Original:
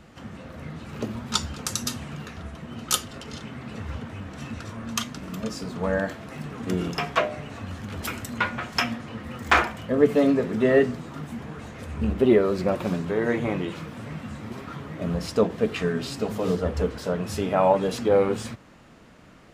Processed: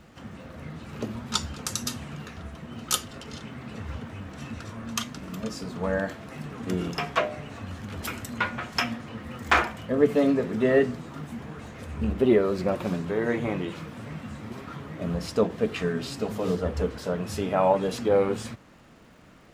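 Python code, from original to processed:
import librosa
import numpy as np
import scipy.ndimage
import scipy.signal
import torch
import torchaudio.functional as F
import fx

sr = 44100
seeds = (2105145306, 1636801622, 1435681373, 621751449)

y = fx.dmg_crackle(x, sr, seeds[0], per_s=290.0, level_db=-54.0)
y = F.gain(torch.from_numpy(y), -2.0).numpy()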